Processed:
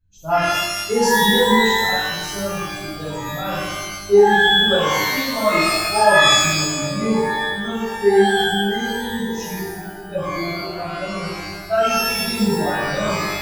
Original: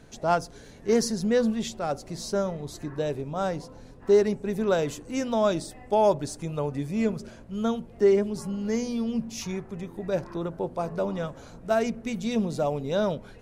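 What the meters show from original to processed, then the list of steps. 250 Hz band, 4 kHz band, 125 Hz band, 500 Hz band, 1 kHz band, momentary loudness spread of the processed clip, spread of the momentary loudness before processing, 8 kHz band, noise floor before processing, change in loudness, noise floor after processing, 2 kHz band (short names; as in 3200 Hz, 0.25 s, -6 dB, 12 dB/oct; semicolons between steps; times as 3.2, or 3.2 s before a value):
+5.0 dB, +21.5 dB, +5.5 dB, +6.0 dB, +12.5 dB, 15 LU, 12 LU, +14.0 dB, -48 dBFS, +9.5 dB, -33 dBFS, +21.0 dB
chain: per-bin expansion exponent 2; shimmer reverb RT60 1.1 s, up +12 st, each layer -2 dB, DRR -10.5 dB; gain -1 dB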